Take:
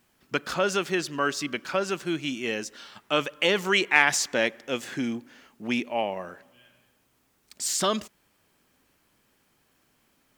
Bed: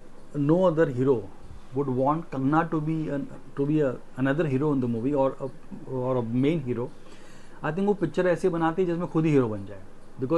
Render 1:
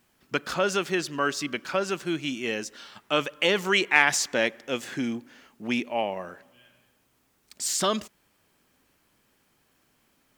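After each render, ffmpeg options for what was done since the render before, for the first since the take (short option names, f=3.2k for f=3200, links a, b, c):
-af anull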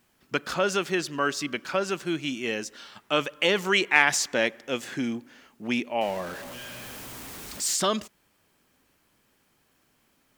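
-filter_complex "[0:a]asettb=1/sr,asplit=3[a][b][c];[a]atrim=end=6.014[d];[b]atrim=start=6.01:end=7.76,asetpts=PTS-STARTPTS,afade=t=in:d=0.004:c=qsin,afade=t=out:st=1.746:d=0.004:c=qsin,aeval=exprs='val(0)+0.5*0.0178*sgn(val(0))':c=same[e];[c]atrim=start=7.756[f];[d][e]acrossfade=d=0.004:c1=hsin:c2=qsin[g];[g][f]acrossfade=d=0.004:c1=qsin:c2=hsin"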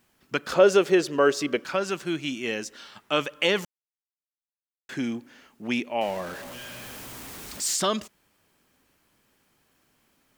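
-filter_complex "[0:a]asettb=1/sr,asplit=3[a][b][c];[a]atrim=end=0.524[d];[b]atrim=start=0.52:end=1.64,asetpts=PTS-STARTPTS,afade=t=in:d=0.004:c=qsin,afade=t=out:st=1.116:d=0.004:c=qsin,equalizer=f=470:w=1.5:g=13[e];[c]atrim=start=1.636[f];[d][e]acrossfade=d=0.004:c1=hsin:c2=qsin[g];[g][f]acrossfade=d=0.004:c1=qsin:c2=hsin,asplit=3[h][i][j];[h]atrim=end=3.65,asetpts=PTS-STARTPTS,afade=t=out:st=3.646:d=0.004:c=hsin[k];[i]atrim=start=3.65:end=4.89,asetpts=PTS-STARTPTS,volume=0[l];[j]atrim=start=4.89,asetpts=PTS-STARTPTS,afade=t=in:d=0.004:c=hsin[m];[k][l][m]concat=n=3:v=0:a=1"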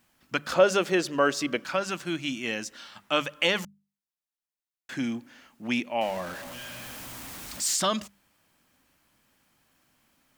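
-af "equalizer=f=410:t=o:w=0.38:g=-9,bandreject=f=50:t=h:w=6,bandreject=f=100:t=h:w=6,bandreject=f=150:t=h:w=6,bandreject=f=200:t=h:w=6"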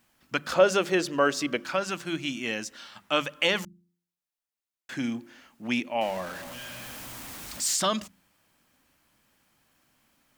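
-af "bandreject=f=87.1:t=h:w=4,bandreject=f=174.2:t=h:w=4,bandreject=f=261.3:t=h:w=4,bandreject=f=348.4:t=h:w=4"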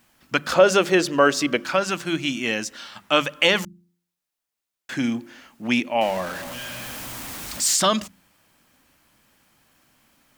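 -af "volume=6.5dB,alimiter=limit=-3dB:level=0:latency=1"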